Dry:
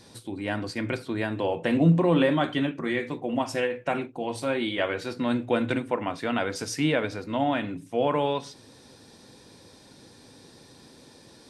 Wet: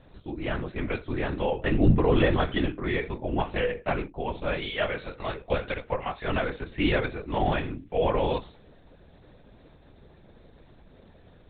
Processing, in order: 4.47–6.28 HPF 420 Hz 24 dB/oct; LPC vocoder at 8 kHz whisper; mismatched tape noise reduction decoder only

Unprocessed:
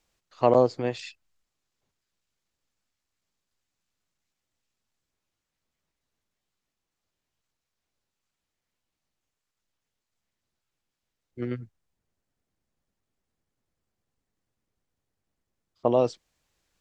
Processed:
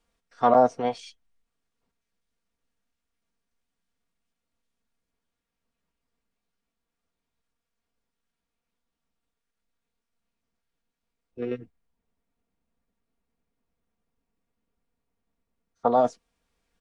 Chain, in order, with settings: high shelf 3100 Hz -10 dB; comb 4.3 ms, depth 59%; formant shift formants +4 st

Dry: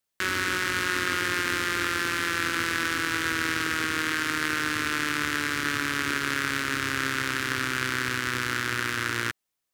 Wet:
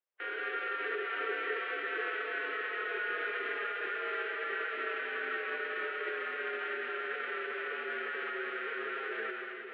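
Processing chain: high shelf 2400 Hz -8 dB; limiter -18 dBFS, peak gain reduction 5 dB; mistuned SSB +70 Hz 250–3000 Hz; reverb RT60 4.9 s, pre-delay 3 ms, DRR -1.5 dB; formant-preserving pitch shift +3 st; gain -7 dB

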